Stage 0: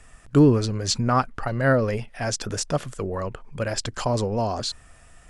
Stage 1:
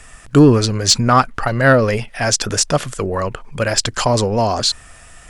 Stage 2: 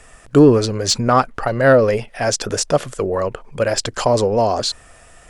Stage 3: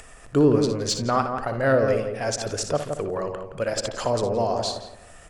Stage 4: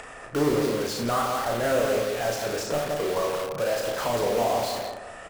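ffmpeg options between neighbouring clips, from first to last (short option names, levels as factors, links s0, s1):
-af "tiltshelf=f=970:g=-3,acontrast=90,volume=1.33"
-af "equalizer=f=500:t=o:w=1.5:g=8,volume=0.562"
-filter_complex "[0:a]asplit=2[s0][s1];[s1]aecho=0:1:60|79:0.316|0.126[s2];[s0][s2]amix=inputs=2:normalize=0,acompressor=mode=upward:threshold=0.0316:ratio=2.5,asplit=2[s3][s4];[s4]adelay=169,lowpass=f=1300:p=1,volume=0.531,asplit=2[s5][s6];[s6]adelay=169,lowpass=f=1300:p=1,volume=0.31,asplit=2[s7][s8];[s8]adelay=169,lowpass=f=1300:p=1,volume=0.31,asplit=2[s9][s10];[s10]adelay=169,lowpass=f=1300:p=1,volume=0.31[s11];[s5][s7][s9][s11]amix=inputs=4:normalize=0[s12];[s3][s12]amix=inputs=2:normalize=0,volume=0.376"
-filter_complex "[0:a]asplit=2[s0][s1];[s1]highpass=f=720:p=1,volume=14.1,asoftclip=type=tanh:threshold=0.376[s2];[s0][s2]amix=inputs=2:normalize=0,lowpass=f=1100:p=1,volume=0.501,asplit=2[s3][s4];[s4]aeval=exprs='(mod(13.3*val(0)+1,2)-1)/13.3':c=same,volume=0.668[s5];[s3][s5]amix=inputs=2:normalize=0,asplit=2[s6][s7];[s7]adelay=34,volume=0.631[s8];[s6][s8]amix=inputs=2:normalize=0,volume=0.376"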